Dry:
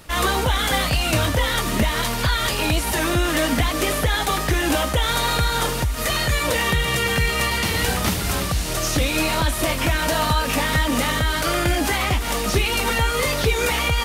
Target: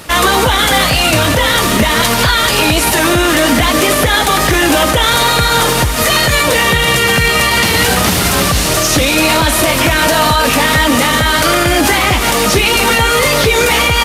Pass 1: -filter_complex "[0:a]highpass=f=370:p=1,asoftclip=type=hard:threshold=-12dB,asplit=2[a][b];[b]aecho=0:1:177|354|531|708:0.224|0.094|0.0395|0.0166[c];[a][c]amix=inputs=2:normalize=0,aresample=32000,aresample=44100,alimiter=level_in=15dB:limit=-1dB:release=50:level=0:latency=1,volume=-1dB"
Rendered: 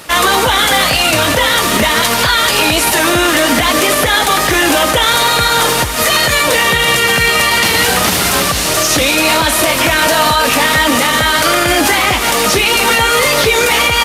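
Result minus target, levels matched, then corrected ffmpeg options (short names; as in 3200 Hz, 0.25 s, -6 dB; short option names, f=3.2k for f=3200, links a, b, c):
125 Hz band -6.0 dB
-filter_complex "[0:a]highpass=f=130:p=1,asoftclip=type=hard:threshold=-12dB,asplit=2[a][b];[b]aecho=0:1:177|354|531|708:0.224|0.094|0.0395|0.0166[c];[a][c]amix=inputs=2:normalize=0,aresample=32000,aresample=44100,alimiter=level_in=15dB:limit=-1dB:release=50:level=0:latency=1,volume=-1dB"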